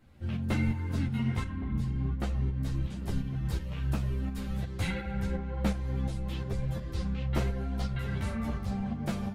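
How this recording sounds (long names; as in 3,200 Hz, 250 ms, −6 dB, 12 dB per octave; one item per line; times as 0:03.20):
tremolo saw up 2.8 Hz, depth 50%
a shimmering, thickened sound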